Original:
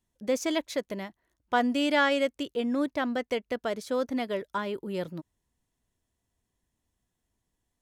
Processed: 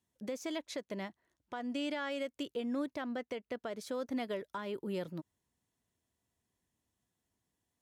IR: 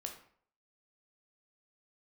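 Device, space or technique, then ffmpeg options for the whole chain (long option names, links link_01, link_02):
podcast mastering chain: -filter_complex "[0:a]asettb=1/sr,asplit=3[link_01][link_02][link_03];[link_01]atrim=end=0.584[link_04];[link_02]atrim=start=0.58:end=2.07,asetpts=PTS-STARTPTS,afade=type=in:duration=0.004:curve=qsin,afade=type=out:start_time=1.486:duration=0.004:curve=qsin,lowpass=9700[link_05];[link_03]atrim=start=2.066[link_06];[link_04][link_05]acrossfade=duration=0.004:curve1=hsin:curve2=qsin[link_07];[link_07][link_06]acrossfade=duration=0.004:curve1=qsin:curve2=hsin,asettb=1/sr,asplit=3[link_08][link_09][link_10];[link_08]atrim=end=3.024[link_11];[link_09]atrim=start=3.02:end=3.77,asetpts=PTS-STARTPTS,afade=type=in:duration=0.004:curve=qsin,afade=type=out:start_time=0.746:duration=0.004:curve=qsin,highshelf=frequency=5700:gain=-7[link_12];[link_10]atrim=start=3.766[link_13];[link_11][link_12]acrossfade=duration=0.004:curve1=hsin:curve2=qsin[link_14];[link_14][link_13]acrossfade=duration=0.004:curve1=qsin:curve2=hsin,highpass=85,deesser=0.75,acompressor=threshold=-29dB:ratio=3,alimiter=level_in=2dB:limit=-24dB:level=0:latency=1:release=317,volume=-2dB,volume=-2dB" -ar 48000 -c:a libmp3lame -b:a 112k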